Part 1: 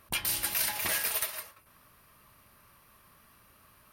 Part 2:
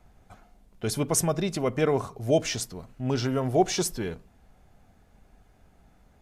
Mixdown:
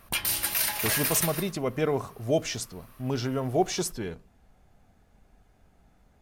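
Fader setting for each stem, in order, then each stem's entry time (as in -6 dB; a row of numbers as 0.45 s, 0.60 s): +3.0 dB, -2.5 dB; 0.00 s, 0.00 s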